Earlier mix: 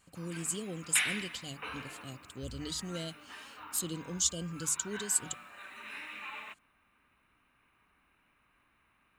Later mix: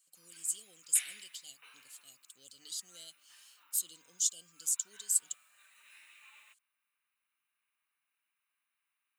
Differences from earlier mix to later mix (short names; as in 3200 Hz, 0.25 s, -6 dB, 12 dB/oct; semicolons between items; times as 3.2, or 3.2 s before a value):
background -5.0 dB; master: add differentiator